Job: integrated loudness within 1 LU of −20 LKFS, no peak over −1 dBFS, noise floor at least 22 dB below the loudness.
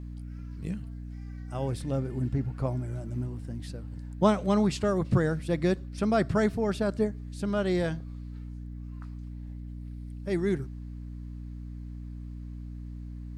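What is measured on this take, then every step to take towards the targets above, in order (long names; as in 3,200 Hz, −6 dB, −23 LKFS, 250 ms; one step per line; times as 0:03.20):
mains hum 60 Hz; hum harmonics up to 300 Hz; level of the hum −37 dBFS; integrated loudness −29.5 LKFS; sample peak −9.0 dBFS; target loudness −20.0 LKFS
→ hum removal 60 Hz, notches 5
level +9.5 dB
brickwall limiter −1 dBFS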